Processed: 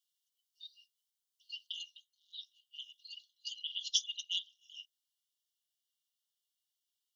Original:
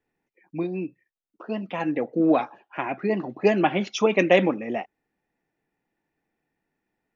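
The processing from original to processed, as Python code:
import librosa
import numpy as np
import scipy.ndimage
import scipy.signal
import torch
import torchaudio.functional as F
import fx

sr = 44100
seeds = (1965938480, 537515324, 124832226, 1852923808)

y = fx.rider(x, sr, range_db=4, speed_s=0.5)
y = fx.brickwall_highpass(y, sr, low_hz=2800.0)
y = y * 10.0 ** (3.5 / 20.0)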